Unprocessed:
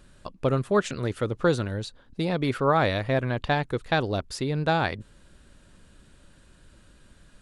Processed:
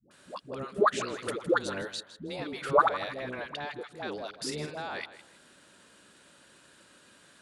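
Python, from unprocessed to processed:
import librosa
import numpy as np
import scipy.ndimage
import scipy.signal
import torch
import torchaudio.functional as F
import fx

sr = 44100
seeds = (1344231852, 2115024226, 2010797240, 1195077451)

y = fx.octave_divider(x, sr, octaves=1, level_db=-6.0)
y = scipy.signal.sosfilt(scipy.signal.butter(2, 200.0, 'highpass', fs=sr, output='sos'), y)
y = fx.low_shelf(y, sr, hz=360.0, db=-9.5)
y = fx.level_steps(y, sr, step_db=22)
y = fx.dispersion(y, sr, late='highs', ms=111.0, hz=460.0)
y = fx.doubler(y, sr, ms=45.0, db=-8.0, at=(4.29, 4.7))
y = fx.echo_feedback(y, sr, ms=159, feedback_pct=26, wet_db=-14.5)
y = fx.band_squash(y, sr, depth_pct=40, at=(1.22, 1.82))
y = F.gain(torch.from_numpy(y), 7.5).numpy()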